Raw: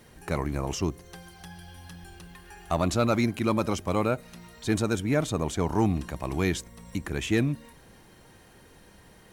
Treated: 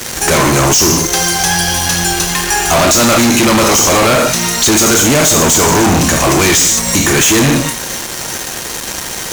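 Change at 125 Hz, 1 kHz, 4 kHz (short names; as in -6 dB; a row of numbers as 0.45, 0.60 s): +13.0, +20.0, +26.5 dB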